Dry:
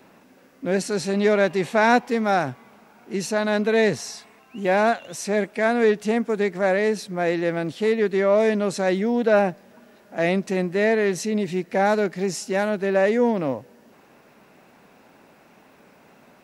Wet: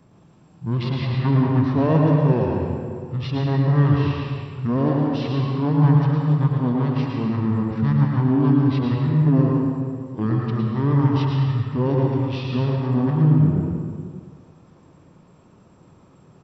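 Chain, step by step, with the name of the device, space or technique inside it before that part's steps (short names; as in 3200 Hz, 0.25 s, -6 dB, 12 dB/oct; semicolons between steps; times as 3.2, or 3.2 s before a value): monster voice (pitch shift -7.5 st; formant shift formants -5 st; low shelf 160 Hz +8.5 dB; echo 0.111 s -8 dB; reverb RT60 2.0 s, pre-delay 99 ms, DRR -0.5 dB); gain -4.5 dB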